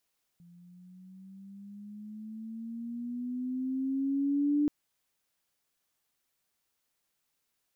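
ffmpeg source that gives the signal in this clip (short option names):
-f lavfi -i "aevalsrc='pow(10,(-23+29.5*(t/4.28-1))/20)*sin(2*PI*171*4.28/(9.5*log(2)/12)*(exp(9.5*log(2)/12*t/4.28)-1))':d=4.28:s=44100"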